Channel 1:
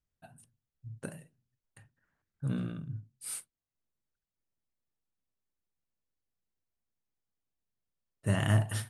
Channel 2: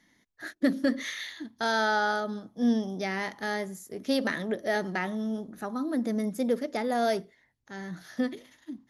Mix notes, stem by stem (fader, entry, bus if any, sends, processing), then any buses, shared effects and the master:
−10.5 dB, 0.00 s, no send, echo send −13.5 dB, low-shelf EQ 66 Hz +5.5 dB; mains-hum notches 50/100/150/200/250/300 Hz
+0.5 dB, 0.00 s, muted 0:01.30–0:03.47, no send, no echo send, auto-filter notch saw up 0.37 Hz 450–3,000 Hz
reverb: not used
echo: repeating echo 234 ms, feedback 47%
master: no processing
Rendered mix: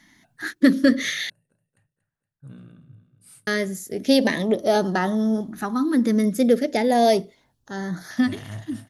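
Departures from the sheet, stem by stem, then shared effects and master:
stem 1: missing mains-hum notches 50/100/150/200/250/300 Hz
stem 2 +0.5 dB → +10.0 dB

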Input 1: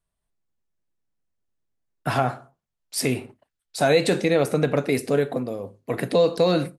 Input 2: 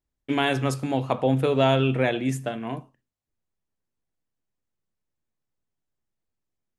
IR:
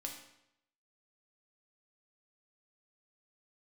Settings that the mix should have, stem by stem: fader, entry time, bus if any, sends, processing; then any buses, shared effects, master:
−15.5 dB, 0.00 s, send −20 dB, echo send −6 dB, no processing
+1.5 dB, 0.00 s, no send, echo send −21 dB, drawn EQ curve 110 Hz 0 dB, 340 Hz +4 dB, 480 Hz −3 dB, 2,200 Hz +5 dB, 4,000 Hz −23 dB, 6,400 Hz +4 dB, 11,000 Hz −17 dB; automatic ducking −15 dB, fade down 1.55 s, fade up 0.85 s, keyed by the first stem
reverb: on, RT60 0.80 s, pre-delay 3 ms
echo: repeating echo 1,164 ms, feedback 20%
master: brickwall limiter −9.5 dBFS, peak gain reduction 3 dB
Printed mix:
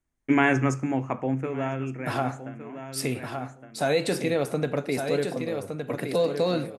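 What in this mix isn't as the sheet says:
stem 1 −15.5 dB → −6.0 dB
master: missing brickwall limiter −9.5 dBFS, peak gain reduction 3 dB

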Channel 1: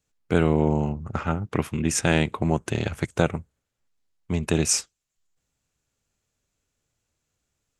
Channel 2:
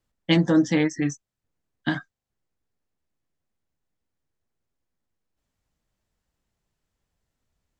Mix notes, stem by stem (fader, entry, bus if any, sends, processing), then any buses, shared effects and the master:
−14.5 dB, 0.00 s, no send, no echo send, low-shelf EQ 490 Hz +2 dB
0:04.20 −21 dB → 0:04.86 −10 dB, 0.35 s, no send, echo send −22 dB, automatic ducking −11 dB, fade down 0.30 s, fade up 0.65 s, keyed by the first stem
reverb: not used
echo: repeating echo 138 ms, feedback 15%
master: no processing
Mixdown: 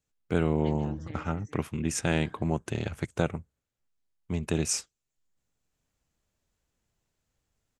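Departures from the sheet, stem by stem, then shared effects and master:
stem 1 −14.5 dB → −7.0 dB
stem 2 −21.0 dB → −13.0 dB

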